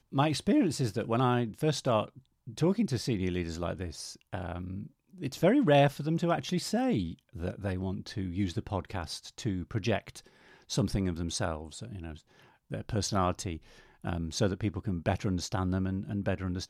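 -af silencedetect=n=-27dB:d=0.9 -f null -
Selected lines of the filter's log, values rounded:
silence_start: 11.57
silence_end: 12.74 | silence_duration: 1.17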